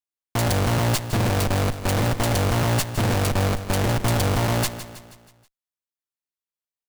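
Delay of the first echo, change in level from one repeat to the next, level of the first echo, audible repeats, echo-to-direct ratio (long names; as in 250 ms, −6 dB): 160 ms, −6.0 dB, −12.5 dB, 4, −11.5 dB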